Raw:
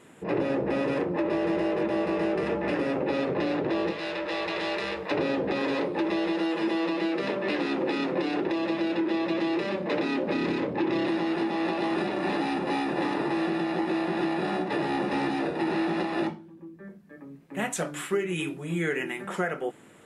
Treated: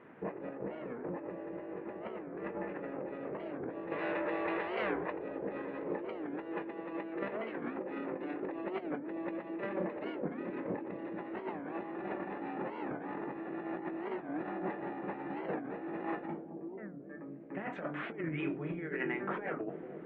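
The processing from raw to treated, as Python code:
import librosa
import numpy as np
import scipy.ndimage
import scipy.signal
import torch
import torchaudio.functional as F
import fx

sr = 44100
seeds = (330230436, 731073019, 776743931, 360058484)

y = scipy.signal.sosfilt(scipy.signal.butter(4, 2100.0, 'lowpass', fs=sr, output='sos'), x)
y = fx.low_shelf(y, sr, hz=160.0, db=-8.0)
y = fx.over_compress(y, sr, threshold_db=-33.0, ratio=-0.5)
y = fx.doubler(y, sr, ms=21.0, db=-13.5)
y = fx.echo_bbd(y, sr, ms=217, stages=1024, feedback_pct=82, wet_db=-9.5)
y = fx.record_warp(y, sr, rpm=45.0, depth_cents=250.0)
y = y * librosa.db_to_amplitude(-6.0)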